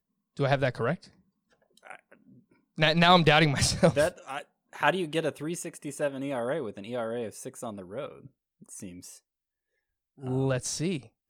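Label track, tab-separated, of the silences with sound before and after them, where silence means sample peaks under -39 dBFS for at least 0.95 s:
9.140000	10.230000	silence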